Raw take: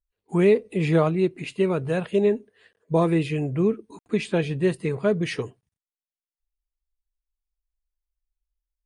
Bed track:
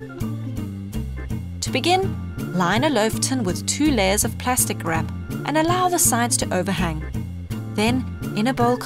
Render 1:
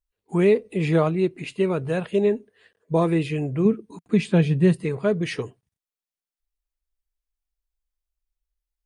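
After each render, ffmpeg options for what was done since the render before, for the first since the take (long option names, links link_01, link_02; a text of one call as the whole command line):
ffmpeg -i in.wav -filter_complex "[0:a]asettb=1/sr,asplit=3[link_01][link_02][link_03];[link_01]atrim=end=3.654[link_04];[link_02]atrim=start=3.65:end=4.84,asetpts=PTS-STARTPTS,afade=type=in:duration=0.004:curve=qsin,afade=type=out:start_time=1.186:duration=0.004:curve=qsin,equalizer=frequency=170:width_type=o:width=0.77:gain=9.5[link_05];[link_03]atrim=start=4.836[link_06];[link_04][link_05]acrossfade=duration=0.004:curve1=hsin:curve2=qsin[link_07];[link_07][link_06]acrossfade=duration=0.004:curve1=qsin:curve2=hsin" out.wav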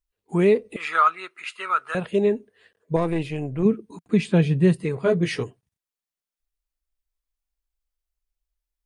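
ffmpeg -i in.wav -filter_complex "[0:a]asettb=1/sr,asplit=3[link_01][link_02][link_03];[link_01]atrim=end=0.764[link_04];[link_02]atrim=start=0.76:end=1.95,asetpts=PTS-STARTPTS,afade=type=in:duration=0.004:curve=qsin,afade=type=out:start_time=1.186:duration=0.004:curve=qsin,highpass=frequency=1300:width_type=q:width=9.2[link_05];[link_03]atrim=start=1.946[link_06];[link_04][link_05]acrossfade=duration=0.004:curve1=hsin:curve2=qsin[link_07];[link_07][link_06]acrossfade=duration=0.004:curve1=qsin:curve2=hsin,asettb=1/sr,asplit=3[link_08][link_09][link_10];[link_08]atrim=end=2.964[link_11];[link_09]atrim=start=2.96:end=3.63,asetpts=PTS-STARTPTS,afade=type=in:duration=0.004:curve=qsin,afade=type=out:start_time=0.666:duration=0.004:curve=qsin,aeval=exprs='(tanh(6.31*val(0)+0.65)-tanh(0.65))/6.31':channel_layout=same[link_12];[link_10]atrim=start=3.626[link_13];[link_11][link_12]acrossfade=duration=0.004:curve1=hsin:curve2=qsin[link_14];[link_14][link_13]acrossfade=duration=0.004:curve1=qsin:curve2=hsin,asettb=1/sr,asplit=3[link_15][link_16][link_17];[link_15]atrim=end=5.044[link_18];[link_16]atrim=start=5.04:end=5.44,asetpts=PTS-STARTPTS,afade=type=in:duration=0.004:curve=qsin,afade=type=out:start_time=0.396:duration=0.004:curve=qsin,asplit=2[link_19][link_20];[link_20]adelay=17,volume=-2.5dB[link_21];[link_19][link_21]amix=inputs=2:normalize=0,atrim=end_sample=17640[link_22];[link_17]atrim=start=5.436[link_23];[link_18][link_22]acrossfade=duration=0.004:curve1=hsin:curve2=qsin[link_24];[link_24][link_23]acrossfade=duration=0.004:curve1=qsin:curve2=hsin" out.wav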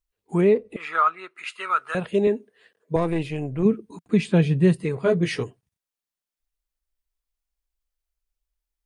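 ffmpeg -i in.wav -filter_complex "[0:a]asettb=1/sr,asplit=3[link_01][link_02][link_03];[link_01]atrim=end=0.414[link_04];[link_02]atrim=start=0.41:end=1.36,asetpts=PTS-STARTPTS,afade=type=in:duration=0.004:curve=qsin,afade=type=out:start_time=0.946:duration=0.004:curve=qsin,highshelf=frequency=2700:gain=-10.5[link_05];[link_03]atrim=start=1.356[link_06];[link_04][link_05]acrossfade=duration=0.004:curve1=hsin:curve2=qsin[link_07];[link_07][link_06]acrossfade=duration=0.004:curve1=qsin:curve2=hsin,asettb=1/sr,asplit=3[link_08][link_09][link_10];[link_08]atrim=end=2.274[link_11];[link_09]atrim=start=2.27:end=2.96,asetpts=PTS-STARTPTS,afade=type=in:duration=0.004:curve=qsin,afade=type=out:start_time=0.686:duration=0.004:curve=qsin,highpass=160[link_12];[link_10]atrim=start=2.956[link_13];[link_11][link_12]acrossfade=duration=0.004:curve1=hsin:curve2=qsin[link_14];[link_14][link_13]acrossfade=duration=0.004:curve1=qsin:curve2=hsin" out.wav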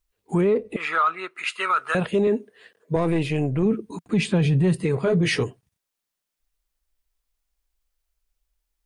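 ffmpeg -i in.wav -af "acontrast=65,alimiter=limit=-13.5dB:level=0:latency=1:release=29" out.wav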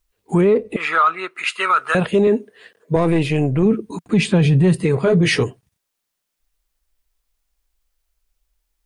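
ffmpeg -i in.wav -af "volume=5.5dB" out.wav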